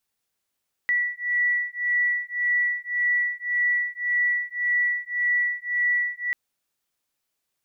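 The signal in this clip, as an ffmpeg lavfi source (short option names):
-f lavfi -i "aevalsrc='0.0596*(sin(2*PI*1950*t)+sin(2*PI*1951.8*t))':d=5.44:s=44100"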